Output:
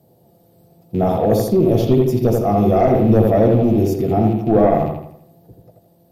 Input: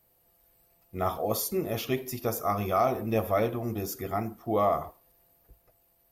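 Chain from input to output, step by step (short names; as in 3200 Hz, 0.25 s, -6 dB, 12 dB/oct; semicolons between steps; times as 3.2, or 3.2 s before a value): rattling part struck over -44 dBFS, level -33 dBFS; HPF 120 Hz 24 dB/oct; band shelf 1700 Hz -12 dB; sine folder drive 3 dB, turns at -15.5 dBFS; in parallel at +2 dB: limiter -26.5 dBFS, peak gain reduction 11 dB; on the sum: tilt -3.5 dB/oct; on a send: analogue delay 82 ms, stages 2048, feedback 44%, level -3 dB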